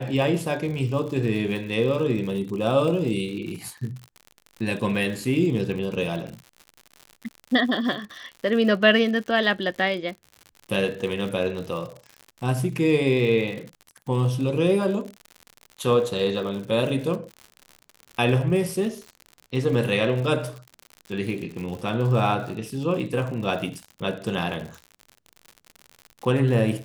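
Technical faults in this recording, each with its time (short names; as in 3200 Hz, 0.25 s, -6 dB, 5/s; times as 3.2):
crackle 83/s -32 dBFS
6.27–6.28 gap 6.1 ms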